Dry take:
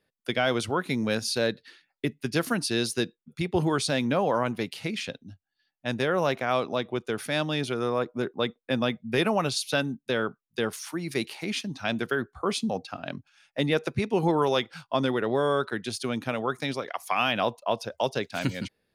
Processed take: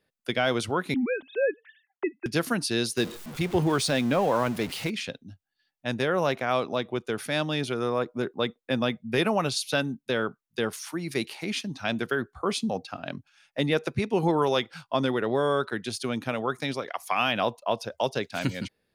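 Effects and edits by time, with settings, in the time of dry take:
0.94–2.26 sine-wave speech
2.97–4.9 zero-crossing step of -34.5 dBFS

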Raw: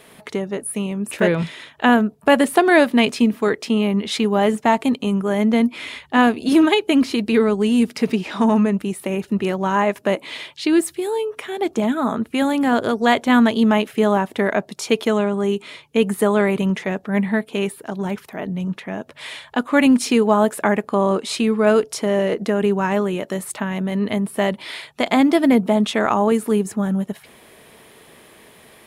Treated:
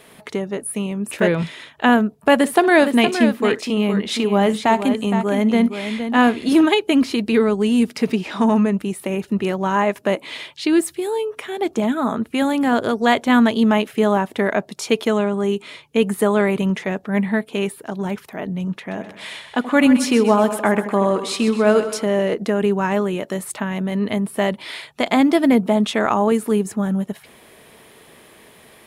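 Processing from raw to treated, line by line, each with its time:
2.35–6.61 tapped delay 61/466 ms -19/-8.5 dB
18.77–22.04 split-band echo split 870 Hz, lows 80 ms, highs 0.128 s, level -10.5 dB

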